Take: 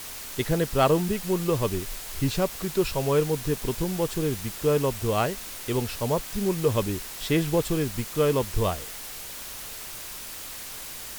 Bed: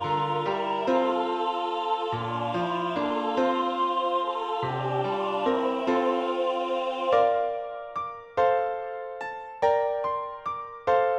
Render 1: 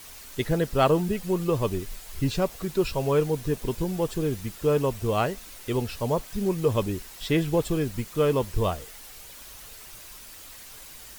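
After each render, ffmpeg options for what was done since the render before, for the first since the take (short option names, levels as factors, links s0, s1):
-af "afftdn=nr=8:nf=-39"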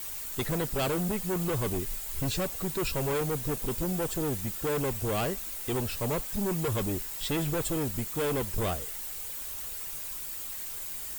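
-filter_complex "[0:a]acrossover=split=3300[s0][s1];[s0]asoftclip=type=hard:threshold=0.0422[s2];[s1]aexciter=amount=2.4:drive=3.1:freq=7200[s3];[s2][s3]amix=inputs=2:normalize=0"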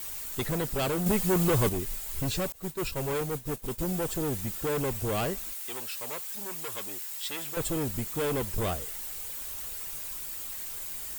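-filter_complex "[0:a]asettb=1/sr,asplit=3[s0][s1][s2];[s0]atrim=end=1.064[s3];[s1]atrim=start=1.06:end=1.69,asetpts=PTS-STARTPTS,afade=t=in:d=0.004:c=qsin,afade=t=out:st=0.626:d=0.004:c=qsin,acontrast=37[s4];[s2]atrim=start=1.686[s5];[s3][s4]acrossfade=d=0.004:c1=hsin:c2=qsin[s6];[s6][s5]acrossfade=d=0.004:c1=qsin:c2=hsin,asettb=1/sr,asplit=3[s7][s8][s9];[s7]atrim=end=2.524[s10];[s8]atrim=start=2.52:end=3.79,asetpts=PTS-STARTPTS,afade=t=in:d=0.004:c=qsin,afade=t=out:st=1.266:d=0.004:c=qsin,agate=range=0.0224:threshold=0.0398:ratio=3:release=100:detection=peak[s11];[s9]atrim=start=3.786[s12];[s10][s11]acrossfade=d=0.004:c1=hsin:c2=qsin[s13];[s13][s12]acrossfade=d=0.004:c1=qsin:c2=hsin,asettb=1/sr,asplit=3[s14][s15][s16];[s14]atrim=end=5.534[s17];[s15]atrim=start=5.53:end=7.57,asetpts=PTS-STARTPTS,afade=t=in:d=0.004:c=qsin,afade=t=out:st=2.036:d=0.004:c=qsin,highpass=f=1500:p=1[s18];[s16]atrim=start=7.566[s19];[s17][s18]acrossfade=d=0.004:c1=hsin:c2=qsin[s20];[s20][s19]acrossfade=d=0.004:c1=qsin:c2=hsin"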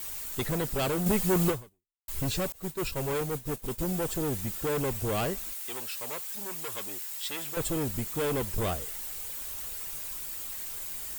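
-filter_complex "[0:a]asplit=2[s0][s1];[s0]atrim=end=2.08,asetpts=PTS-STARTPTS,afade=t=out:st=1.49:d=0.59:c=exp[s2];[s1]atrim=start=2.08,asetpts=PTS-STARTPTS,afade=t=in:d=0.004:c=hsin[s3];[s2][s3]concat=n=2:v=0:a=1"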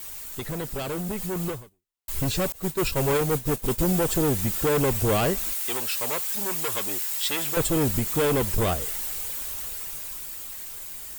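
-af "alimiter=limit=0.0668:level=0:latency=1:release=125,dynaudnorm=f=400:g=11:m=2.82"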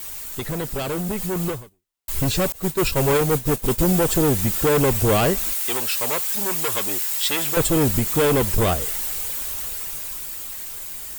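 -af "volume=1.68"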